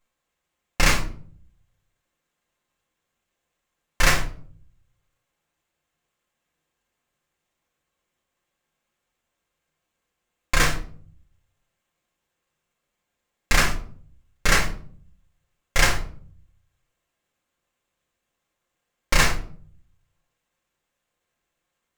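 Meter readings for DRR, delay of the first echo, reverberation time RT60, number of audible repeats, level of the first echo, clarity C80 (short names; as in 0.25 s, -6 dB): -3.0 dB, none, 0.50 s, none, none, 15.5 dB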